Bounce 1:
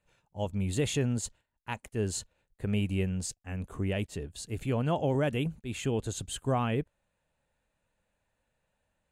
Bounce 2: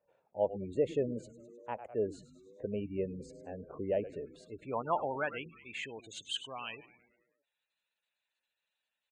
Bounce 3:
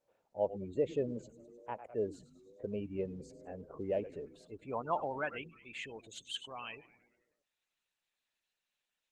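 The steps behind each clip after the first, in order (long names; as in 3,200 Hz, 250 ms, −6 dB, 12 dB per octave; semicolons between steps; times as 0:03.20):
echo with shifted repeats 102 ms, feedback 58%, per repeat −120 Hz, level −12 dB; gate on every frequency bin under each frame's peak −25 dB strong; band-pass filter sweep 570 Hz → 4,000 Hz, 0:04.03–0:06.85; level +6.5 dB
level −2 dB; Opus 16 kbit/s 48,000 Hz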